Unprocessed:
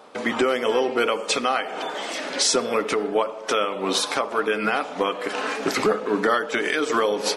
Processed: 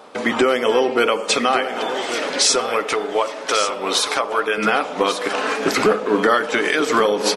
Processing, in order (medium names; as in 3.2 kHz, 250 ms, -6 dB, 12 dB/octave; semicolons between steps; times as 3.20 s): 2.46–4.58 s: peaking EQ 200 Hz -10 dB 1.7 oct; delay 1139 ms -10 dB; trim +4.5 dB